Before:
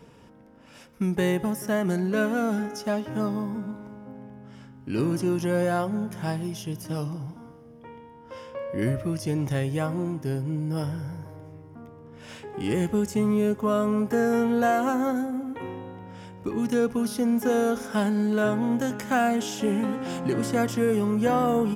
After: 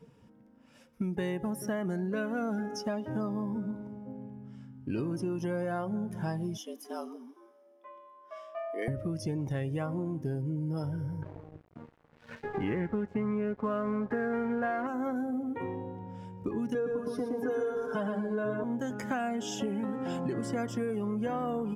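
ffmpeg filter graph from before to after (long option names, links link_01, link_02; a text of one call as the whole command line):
ffmpeg -i in.wav -filter_complex "[0:a]asettb=1/sr,asplit=3[link_01][link_02][link_03];[link_01]atrim=end=6.574[link_04];[link_02]atrim=start=6.57:end=8.88,asetpts=PTS-STARTPTS,afade=type=in:duration=0.004:curve=qsin,afade=type=out:start_time=2.306:duration=0.004:curve=qsin,highpass=frequency=640:poles=1,afreqshift=110[link_05];[link_03]atrim=start=8.876[link_06];[link_04][link_05]acrossfade=duration=0.004:curve1=hsin:curve2=qsin[link_07];[link_07][link_06]acrossfade=duration=0.004:curve1=qsin:curve2=hsin,asettb=1/sr,asplit=3[link_08][link_09][link_10];[link_08]atrim=end=11.224[link_11];[link_09]atrim=start=11.22:end=14.87,asetpts=PTS-STARTPTS,afade=type=in:duration=0.004:curve=qsin,afade=type=out:start_time=3.646:duration=0.004:curve=qsin,lowpass=frequency=1900:width_type=q:width=1.7,acontrast=73,aeval=exprs='sgn(val(0))*max(abs(val(0))-0.0168,0)':channel_layout=same[link_12];[link_10]atrim=start=14.866[link_13];[link_11][link_12]acrossfade=duration=0.004:curve1=hsin:curve2=qsin[link_14];[link_14][link_13]acrossfade=duration=0.004:curve1=qsin:curve2=hsin,asettb=1/sr,asplit=3[link_15][link_16][link_17];[link_15]atrim=end=16.744[link_18];[link_16]atrim=start=16.74:end=18.64,asetpts=PTS-STARTPTS,afade=type=in:duration=0.004:curve=qsin,afade=type=out:start_time=1.896:duration=0.004:curve=qsin,highshelf=frequency=2700:gain=-9,aecho=1:1:6.6:0.87,atrim=end_sample=83790,aecho=1:1:118|236|354|472|590:0.668|0.254|0.0965|0.0367|0.0139,atrim=end_sample=83790[link_19];[link_17]atrim=start=18.636[link_20];[link_18][link_19]acrossfade=duration=0.004:curve1=hsin:curve2=qsin[link_21];[link_21][link_20]acrossfade=duration=0.004:curve1=qsin:curve2=hsin,afftdn=noise_reduction=12:noise_floor=-39,acompressor=threshold=-30dB:ratio=6" out.wav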